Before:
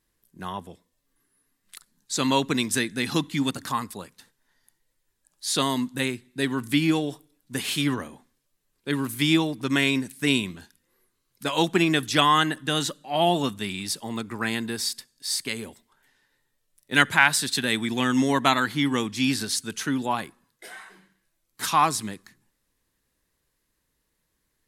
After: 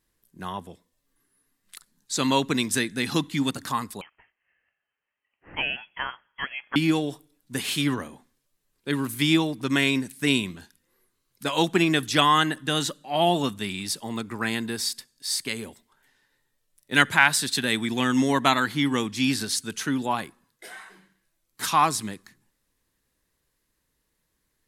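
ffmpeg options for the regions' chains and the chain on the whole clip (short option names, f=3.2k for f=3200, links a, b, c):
-filter_complex "[0:a]asettb=1/sr,asplit=3[a][b][c];[a]atrim=end=4.014[d];[b]atrim=start=4.01:end=6.76,asetpts=PTS-STARTPTS,afade=t=in:d=0.004:c=qsin,afade=t=out:st=2.746:d=0.004:c=qsin,highpass=f=570:w=0.5412,highpass=f=570:w=1.3066,lowpass=f=3.1k:t=q:w=0.5098,lowpass=f=3.1k:t=q:w=0.6013,lowpass=f=3.1k:t=q:w=0.9,lowpass=f=3.1k:t=q:w=2.563,afreqshift=-3600[e];[c]atrim=start=6.756[f];[d][e]acrossfade=d=0.004:c1=hsin:c2=qsin[g];[g][f]acrossfade=d=0.004:c1=qsin:c2=hsin"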